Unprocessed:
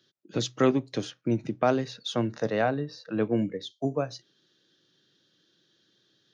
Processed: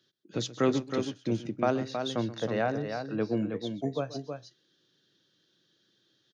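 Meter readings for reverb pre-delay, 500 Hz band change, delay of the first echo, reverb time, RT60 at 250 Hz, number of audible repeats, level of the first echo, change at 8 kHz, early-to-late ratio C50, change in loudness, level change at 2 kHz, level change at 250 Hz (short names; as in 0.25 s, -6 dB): none, -2.5 dB, 0.129 s, none, none, 2, -17.0 dB, n/a, none, -2.5 dB, -2.5 dB, -2.5 dB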